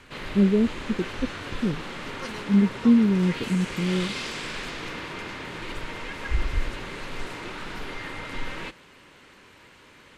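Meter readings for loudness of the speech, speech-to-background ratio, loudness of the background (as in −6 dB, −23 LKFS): −24.0 LKFS, 10.0 dB, −34.0 LKFS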